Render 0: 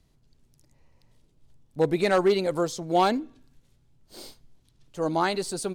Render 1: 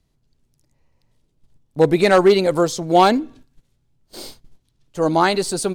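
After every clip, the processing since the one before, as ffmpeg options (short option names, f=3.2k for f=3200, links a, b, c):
-af "agate=range=-11dB:threshold=-51dB:ratio=16:detection=peak,volume=8.5dB"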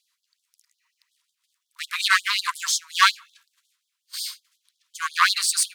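-af "aeval=exprs='clip(val(0),-1,0.075)':c=same,afftfilt=real='re*gte(b*sr/1024,920*pow(3200/920,0.5+0.5*sin(2*PI*5.5*pts/sr)))':imag='im*gte(b*sr/1024,920*pow(3200/920,0.5+0.5*sin(2*PI*5.5*pts/sr)))':win_size=1024:overlap=0.75,volume=6.5dB"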